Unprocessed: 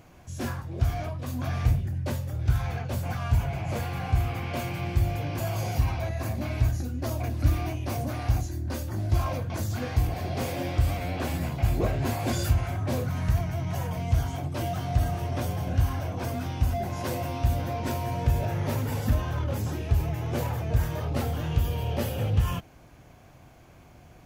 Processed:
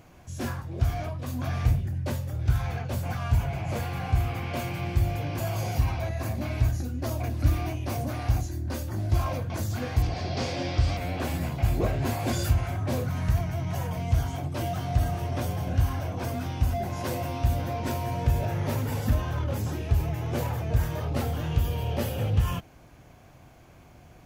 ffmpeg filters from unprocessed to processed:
ffmpeg -i in.wav -filter_complex "[0:a]asettb=1/sr,asplit=3[link_01][link_02][link_03];[link_01]atrim=end=10.024[link_04];[link_02]atrim=start=10.02:end=10.97,asetpts=PTS-STARTPTS,afade=type=in:duration=0.004:curve=qsin,afade=type=out:start_time=0.946:duration=0.004:curve=qsin,lowpass=frequency=5100:width_type=q:width=2.4[link_05];[link_03]atrim=start=10.966[link_06];[link_04][link_05]acrossfade=duration=0.004:curve1=hsin:curve2=qsin[link_07];[link_07][link_06]acrossfade=duration=0.004:curve1=qsin:curve2=hsin" out.wav

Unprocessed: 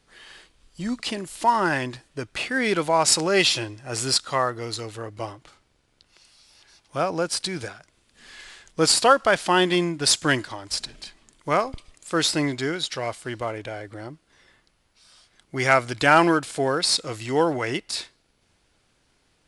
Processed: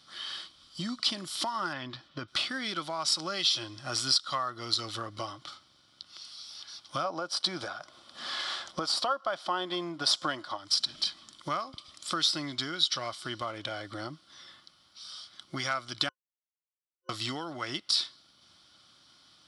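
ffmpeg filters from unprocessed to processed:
ffmpeg -i in.wav -filter_complex "[0:a]asettb=1/sr,asplit=3[link_01][link_02][link_03];[link_01]atrim=end=1.734[link_04];[link_02]atrim=start=1.73:end=2.28,asetpts=PTS-STARTPTS,afade=type=in:duration=0.004:curve=qsin,afade=type=out:start_time=0.546:duration=0.004:curve=qsin,lowpass=3300[link_05];[link_03]atrim=start=2.276[link_06];[link_04][link_05]acrossfade=duration=0.004:curve1=hsin:curve2=qsin[link_07];[link_07][link_06]acrossfade=duration=0.004:curve1=qsin:curve2=hsin,asplit=3[link_08][link_09][link_10];[link_08]afade=type=out:start_time=7.04:duration=0.02[link_11];[link_09]equalizer=frequency=680:width=0.57:gain=13.5,afade=type=in:start_time=7.04:duration=0.02,afade=type=out:start_time=10.56:duration=0.02[link_12];[link_10]afade=type=in:start_time=10.56:duration=0.02[link_13];[link_11][link_12][link_13]amix=inputs=3:normalize=0,asplit=3[link_14][link_15][link_16];[link_14]atrim=end=16.09,asetpts=PTS-STARTPTS,afade=type=out:start_time=16.086:duration=0.004:curve=hsin[link_17];[link_15]atrim=start=16.09:end=17.09,asetpts=PTS-STARTPTS,volume=0[link_18];[link_16]atrim=start=17.09,asetpts=PTS-STARTPTS,afade=type=in:duration=0.004:curve=hsin[link_19];[link_17][link_18][link_19]concat=n=3:v=0:a=1,highpass=110,acompressor=threshold=-34dB:ratio=5,superequalizer=7b=0.355:10b=2.51:13b=3.98:14b=3.55" out.wav

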